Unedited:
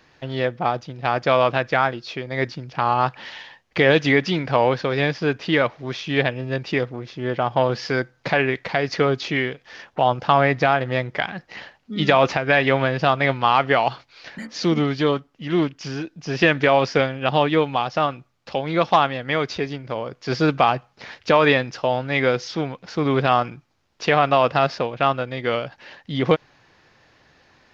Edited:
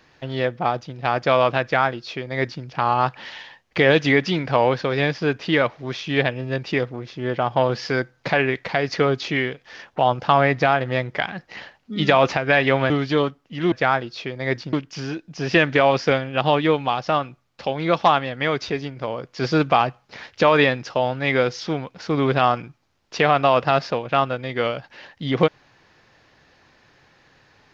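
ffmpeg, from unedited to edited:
ffmpeg -i in.wav -filter_complex "[0:a]asplit=4[link_01][link_02][link_03][link_04];[link_01]atrim=end=12.902[link_05];[link_02]atrim=start=14.788:end=15.612[link_06];[link_03]atrim=start=1.628:end=2.642[link_07];[link_04]atrim=start=15.608[link_08];[link_05][link_06]acrossfade=duration=0.004:curve1=hsin:curve2=hsin[link_09];[link_09][link_07]acrossfade=duration=0.004:curve1=hsin:curve2=hsin[link_10];[link_10][link_08]acrossfade=duration=0.004:curve1=hsin:curve2=hsin" out.wav

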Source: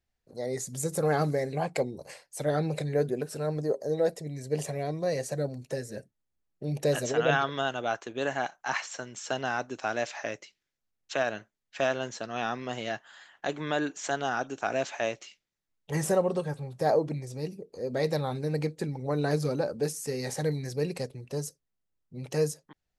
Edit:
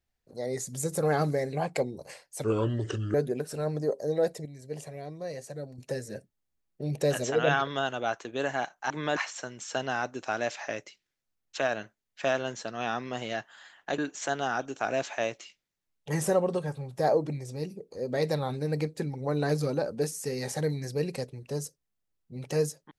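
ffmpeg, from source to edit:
ffmpeg -i in.wav -filter_complex "[0:a]asplit=8[link_01][link_02][link_03][link_04][link_05][link_06][link_07][link_08];[link_01]atrim=end=2.444[link_09];[link_02]atrim=start=2.44:end=2.96,asetpts=PTS-STARTPTS,asetrate=32634,aresample=44100,atrim=end_sample=30989,asetpts=PTS-STARTPTS[link_10];[link_03]atrim=start=2.956:end=4.272[link_11];[link_04]atrim=start=4.268:end=5.602,asetpts=PTS-STARTPTS,volume=-8dB[link_12];[link_05]atrim=start=5.598:end=8.722[link_13];[link_06]atrim=start=13.538:end=13.802[link_14];[link_07]atrim=start=8.718:end=13.542[link_15];[link_08]atrim=start=13.798[link_16];[link_09][link_10]acrossfade=duration=0.004:curve1=hsin:curve2=hsin[link_17];[link_17][link_11]acrossfade=duration=0.004:curve1=hsin:curve2=hsin[link_18];[link_18][link_12]acrossfade=duration=0.004:curve1=hsin:curve2=hsin[link_19];[link_19][link_13]acrossfade=duration=0.004:curve1=hsin:curve2=hsin[link_20];[link_20][link_14]acrossfade=duration=0.004:curve1=hsin:curve2=hsin[link_21];[link_21][link_15]acrossfade=duration=0.004:curve1=hsin:curve2=hsin[link_22];[link_22][link_16]acrossfade=duration=0.004:curve1=hsin:curve2=hsin" out.wav

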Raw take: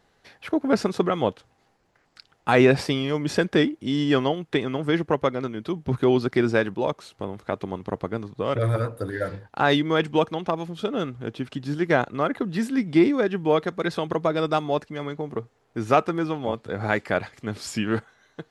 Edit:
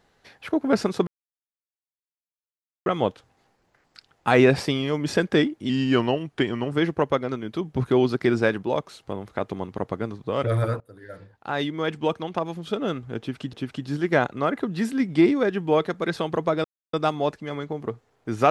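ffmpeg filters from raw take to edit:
ffmpeg -i in.wav -filter_complex "[0:a]asplit=7[link_01][link_02][link_03][link_04][link_05][link_06][link_07];[link_01]atrim=end=1.07,asetpts=PTS-STARTPTS,afade=type=out:start_time=1.066:duration=0.004:curve=hsin,apad=pad_dur=1.79[link_08];[link_02]atrim=start=1.07:end=3.904,asetpts=PTS-STARTPTS,afade=type=in:duration=0.004:curve=hsin[link_09];[link_03]atrim=start=3.9:end=4.84,asetpts=PTS-STARTPTS,asetrate=40131,aresample=44100[link_10];[link_04]atrim=start=4.836:end=8.92,asetpts=PTS-STARTPTS,afade=type=out:start_time=4.08:duration=0.004:curve=hsin:silence=0.0749894[link_11];[link_05]atrim=start=8.92:end=11.652,asetpts=PTS-STARTPTS,afade=type=in:duration=1.89:silence=0.0749894[link_12];[link_06]atrim=start=11.308:end=14.42,asetpts=PTS-STARTPTS,afade=type=out:start_time=3.108:duration=0.004:curve=hsin,apad=pad_dur=0.29[link_13];[link_07]atrim=start=14.42,asetpts=PTS-STARTPTS,afade=type=in:duration=0.004:curve=hsin[link_14];[link_08][link_09]concat=n=2:v=0:a=1[link_15];[link_15][link_10]acrossfade=duration=0.004:curve1=hsin:curve2=hsin[link_16];[link_11][link_12]concat=n=2:v=0:a=1[link_17];[link_16][link_17]acrossfade=duration=0.004:curve1=hsin:curve2=hsin[link_18];[link_13][link_14]concat=n=2:v=0:a=1[link_19];[link_18][link_19]acrossfade=duration=0.004:curve1=hsin:curve2=hsin" out.wav

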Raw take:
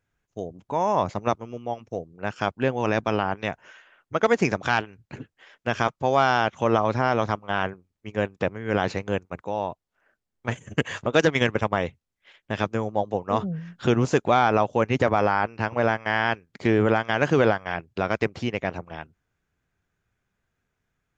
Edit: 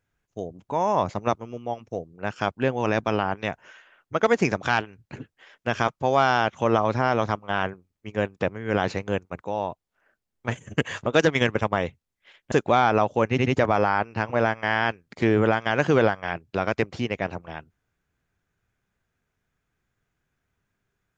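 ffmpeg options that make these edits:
ffmpeg -i in.wav -filter_complex "[0:a]asplit=4[link_01][link_02][link_03][link_04];[link_01]atrim=end=12.522[link_05];[link_02]atrim=start=14.108:end=14.972[link_06];[link_03]atrim=start=14.888:end=14.972[link_07];[link_04]atrim=start=14.888[link_08];[link_05][link_06]acrossfade=duration=0.004:curve1=hsin:curve2=hsin[link_09];[link_09][link_07]acrossfade=duration=0.004:curve1=hsin:curve2=hsin[link_10];[link_10][link_08]acrossfade=duration=0.004:curve1=hsin:curve2=hsin" out.wav

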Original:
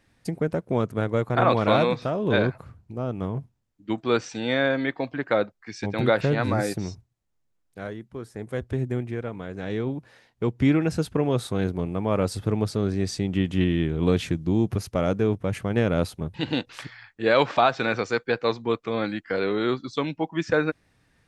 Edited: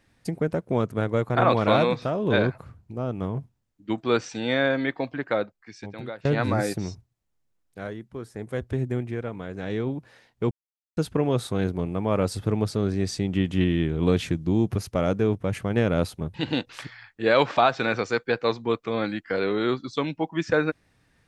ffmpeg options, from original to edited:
ffmpeg -i in.wav -filter_complex "[0:a]asplit=4[link_01][link_02][link_03][link_04];[link_01]atrim=end=6.25,asetpts=PTS-STARTPTS,afade=type=out:start_time=5.01:duration=1.24:silence=0.0630957[link_05];[link_02]atrim=start=6.25:end=10.51,asetpts=PTS-STARTPTS,afade=type=in:duration=0.004:curve=hsin:silence=0.0630957,afade=type=out:start_time=4.256:duration=0.004:curve=hsin[link_06];[link_03]atrim=start=10.51:end=10.97,asetpts=PTS-STARTPTS,volume=0[link_07];[link_04]atrim=start=10.97,asetpts=PTS-STARTPTS,afade=type=in:duration=0.004:curve=hsin[link_08];[link_05][link_06][link_07][link_08]concat=n=4:v=0:a=1" out.wav

